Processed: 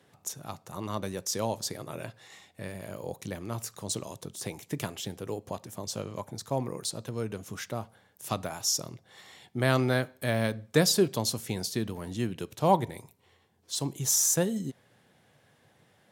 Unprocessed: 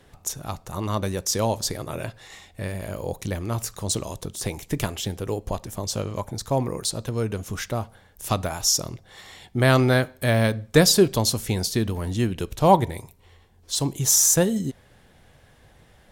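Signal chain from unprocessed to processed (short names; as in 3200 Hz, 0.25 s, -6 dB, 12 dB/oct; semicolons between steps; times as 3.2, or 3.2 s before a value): HPF 110 Hz 24 dB/oct; gain -7 dB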